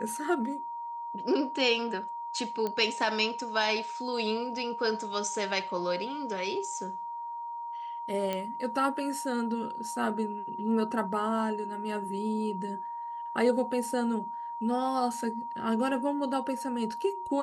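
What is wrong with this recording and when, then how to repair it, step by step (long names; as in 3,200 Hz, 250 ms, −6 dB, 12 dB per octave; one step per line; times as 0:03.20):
whistle 940 Hz −35 dBFS
0:02.67: click −19 dBFS
0:08.33: click −18 dBFS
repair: click removal
notch filter 940 Hz, Q 30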